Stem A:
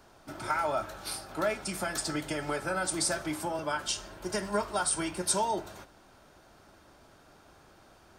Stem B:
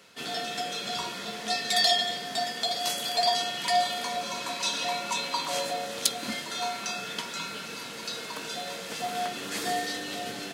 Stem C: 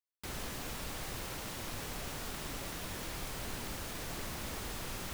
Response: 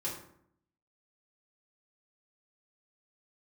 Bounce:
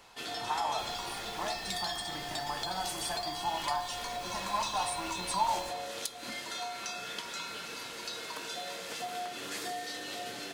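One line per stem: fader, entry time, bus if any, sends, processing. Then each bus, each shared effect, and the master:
-15.0 dB, 0.00 s, send -8 dB, band shelf 980 Hz +10.5 dB 1.1 oct; comb 1.1 ms, depth 80%
-3.5 dB, 0.00 s, send -15 dB, compressor 6:1, threshold -32 dBFS, peak gain reduction 13.5 dB; bell 190 Hz -7 dB 0.9 oct
-10.0 dB, 0.55 s, no send, dry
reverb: on, RT60 0.70 s, pre-delay 3 ms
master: dry

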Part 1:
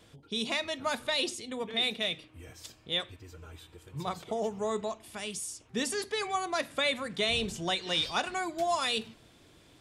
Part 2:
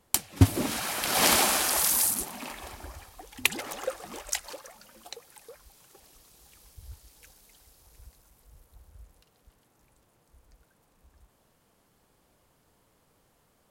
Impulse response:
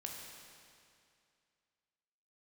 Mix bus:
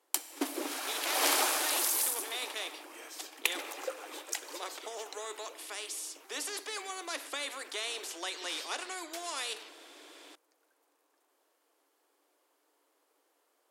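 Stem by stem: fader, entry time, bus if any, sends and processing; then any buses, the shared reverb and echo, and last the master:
-4.0 dB, 0.55 s, no send, spectral compressor 2:1
-7.5 dB, 0.00 s, send -5 dB, dry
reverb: on, RT60 2.4 s, pre-delay 14 ms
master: Chebyshev high-pass 290 Hz, order 6

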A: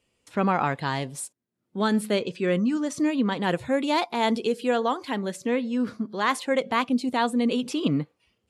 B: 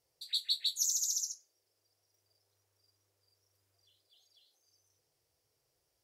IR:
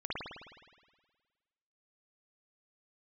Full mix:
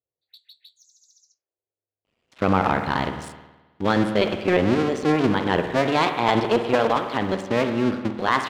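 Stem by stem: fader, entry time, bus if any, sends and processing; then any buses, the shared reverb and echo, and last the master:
+2.0 dB, 2.05 s, send -11 dB, cycle switcher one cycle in 2, muted
-7.5 dB, 0.00 s, no send, low-pass opened by the level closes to 570 Hz, open at -32 dBFS; compressor 6:1, threshold -37 dBFS, peak gain reduction 10 dB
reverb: on, RT60 1.5 s, pre-delay 52 ms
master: LPF 4100 Hz 12 dB/oct; low shelf 76 Hz -7 dB; sample leveller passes 1

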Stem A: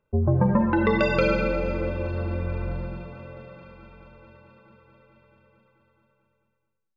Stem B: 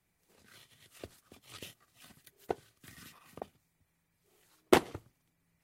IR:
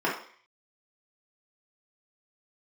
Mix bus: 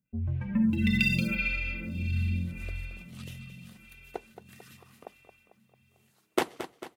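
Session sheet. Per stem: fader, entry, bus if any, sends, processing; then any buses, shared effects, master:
+2.0 dB, 0.00 s, no send, echo send -23.5 dB, median filter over 5 samples; EQ curve 240 Hz 0 dB, 410 Hz -26 dB, 1100 Hz -25 dB, 2500 Hz +8 dB, 4300 Hz +3 dB; photocell phaser 0.81 Hz
-2.0 dB, 1.65 s, no send, echo send -11.5 dB, low shelf 160 Hz -11.5 dB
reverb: off
echo: feedback echo 0.223 s, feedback 57%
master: HPF 47 Hz

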